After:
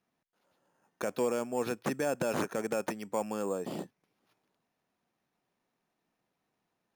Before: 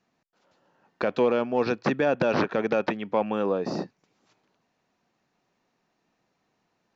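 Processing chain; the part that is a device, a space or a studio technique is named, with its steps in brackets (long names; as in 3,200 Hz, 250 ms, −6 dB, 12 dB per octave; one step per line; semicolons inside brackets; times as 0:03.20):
crushed at another speed (tape speed factor 0.8×; decimation without filtering 7×; tape speed factor 1.25×)
level −8 dB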